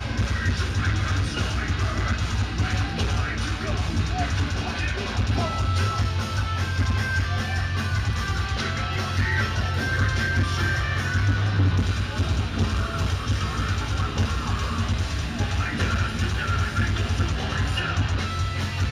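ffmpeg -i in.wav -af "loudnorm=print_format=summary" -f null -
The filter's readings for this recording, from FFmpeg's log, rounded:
Input Integrated:    -25.1 LUFS
Input True Peak:     -10.2 dBTP
Input LRA:             1.9 LU
Input Threshold:     -35.1 LUFS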